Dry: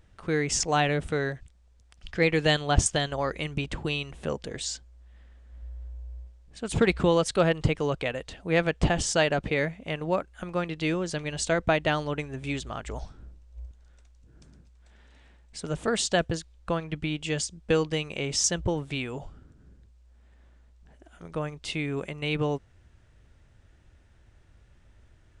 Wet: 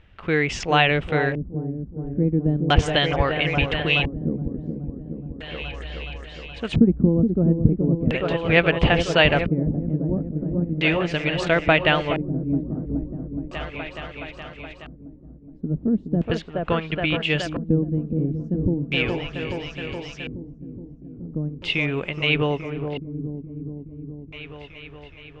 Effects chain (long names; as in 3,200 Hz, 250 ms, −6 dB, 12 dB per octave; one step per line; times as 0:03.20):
echo whose low-pass opens from repeat to repeat 421 ms, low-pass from 750 Hz, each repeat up 1 octave, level −6 dB
auto-filter low-pass square 0.37 Hz 250–2,800 Hz
level +4.5 dB